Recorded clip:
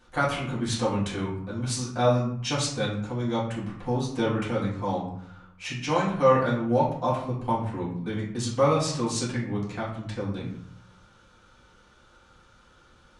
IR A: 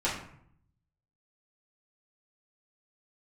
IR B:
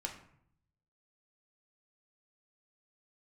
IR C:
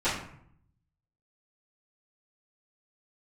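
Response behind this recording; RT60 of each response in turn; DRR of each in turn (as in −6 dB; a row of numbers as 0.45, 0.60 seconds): A; 0.65, 0.65, 0.65 seconds; −9.0, 1.0, −16.0 decibels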